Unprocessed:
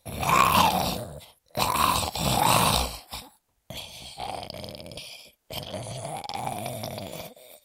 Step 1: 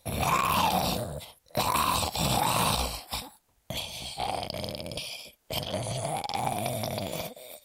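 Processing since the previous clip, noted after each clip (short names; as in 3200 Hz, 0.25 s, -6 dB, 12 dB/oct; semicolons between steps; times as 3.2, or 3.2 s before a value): in parallel at +1.5 dB: compressor, threshold -31 dBFS, peak gain reduction 15.5 dB; on the sum: limiter -12 dBFS, peak gain reduction 9.5 dB; gain -3 dB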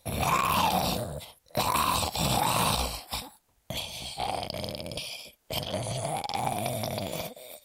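nothing audible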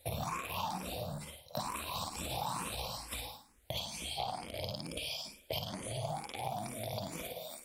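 on a send: flutter echo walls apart 9.3 m, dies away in 0.47 s; on the sum: compressor 6:1, threshold -36 dBFS, peak gain reduction 15 dB; endless phaser +2.2 Hz; gain +2.5 dB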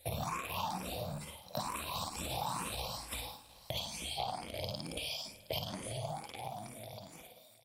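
ending faded out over 1.96 s; echo 0.717 s -22 dB; mismatched tape noise reduction encoder only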